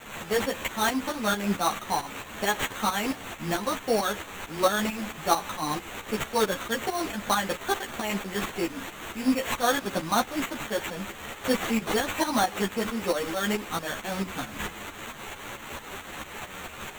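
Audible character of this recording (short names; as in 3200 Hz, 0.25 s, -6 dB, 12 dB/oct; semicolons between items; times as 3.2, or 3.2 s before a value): a quantiser's noise floor 6-bit, dither triangular; tremolo saw up 4.5 Hz, depth 70%; aliases and images of a low sample rate 5000 Hz, jitter 0%; a shimmering, thickened sound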